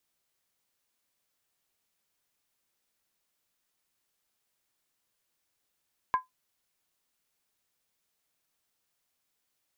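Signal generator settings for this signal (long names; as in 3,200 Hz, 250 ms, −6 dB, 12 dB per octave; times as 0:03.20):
struck skin, lowest mode 1,020 Hz, decay 0.15 s, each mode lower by 12 dB, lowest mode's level −18 dB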